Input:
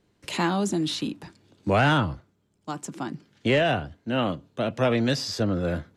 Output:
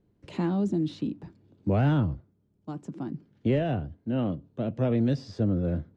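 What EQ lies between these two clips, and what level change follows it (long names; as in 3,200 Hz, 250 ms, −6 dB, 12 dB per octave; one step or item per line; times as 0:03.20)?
tilt shelving filter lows +8.5 dB, about 710 Hz
dynamic equaliser 1,100 Hz, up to −3 dB, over −38 dBFS, Q 0.94
high-frequency loss of the air 74 metres
−6.5 dB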